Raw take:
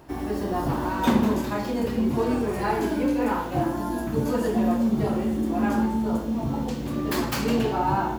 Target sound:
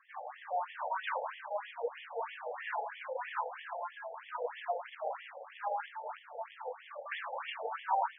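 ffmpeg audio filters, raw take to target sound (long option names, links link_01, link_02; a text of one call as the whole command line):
ffmpeg -i in.wav -af "acrusher=bits=4:mode=log:mix=0:aa=0.000001,afftfilt=real='re*between(b*sr/1024,610*pow(2500/610,0.5+0.5*sin(2*PI*3.1*pts/sr))/1.41,610*pow(2500/610,0.5+0.5*sin(2*PI*3.1*pts/sr))*1.41)':imag='im*between(b*sr/1024,610*pow(2500/610,0.5+0.5*sin(2*PI*3.1*pts/sr))/1.41,610*pow(2500/610,0.5+0.5*sin(2*PI*3.1*pts/sr))*1.41)':win_size=1024:overlap=0.75,volume=-3dB" out.wav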